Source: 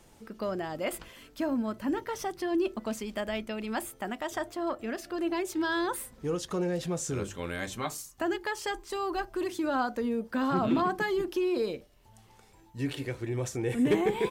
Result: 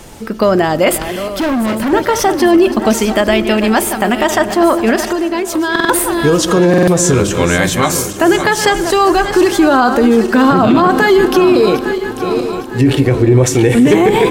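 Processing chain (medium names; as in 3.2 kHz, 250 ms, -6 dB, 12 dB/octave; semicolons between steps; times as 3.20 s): backward echo that repeats 428 ms, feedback 64%, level -11 dB; 1.14–1.93 s: overload inside the chain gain 35.5 dB; 5.06–5.75 s: compression 6:1, threshold -36 dBFS, peak gain reduction 10 dB; 12.81–13.44 s: tilt shelf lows +5 dB; reverberation RT60 2.2 s, pre-delay 83 ms, DRR 20 dB; buffer glitch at 5.71/6.69 s, samples 2048, times 3; loudness maximiser +23.5 dB; trim -1 dB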